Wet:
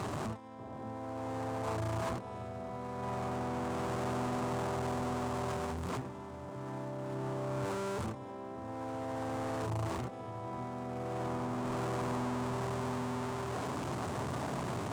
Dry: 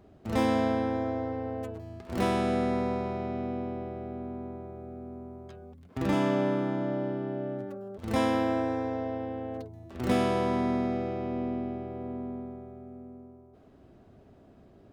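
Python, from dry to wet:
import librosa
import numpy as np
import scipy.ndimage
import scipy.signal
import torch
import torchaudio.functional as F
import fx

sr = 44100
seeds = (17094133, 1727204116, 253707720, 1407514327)

y = x + 0.5 * 10.0 ** (-34.5 / 20.0) * np.sign(x)
y = scipy.signal.sosfilt(scipy.signal.butter(2, 80.0, 'highpass', fs=sr, output='sos'), y)
y = fx.high_shelf(y, sr, hz=6000.0, db=-11.5)
y = fx.hum_notches(y, sr, base_hz=50, count=5)
y = fx.over_compress(y, sr, threshold_db=-34.0, ratio=-0.5)
y = np.clip(y, -10.0 ** (-33.5 / 20.0), 10.0 ** (-33.5 / 20.0))
y = fx.graphic_eq_10(y, sr, hz=(125, 1000, 8000), db=(9, 10, 10))
y = fx.echo_alternate(y, sr, ms=587, hz=860.0, feedback_pct=57, wet_db=-11.0)
y = F.gain(torch.from_numpy(y), -4.5).numpy()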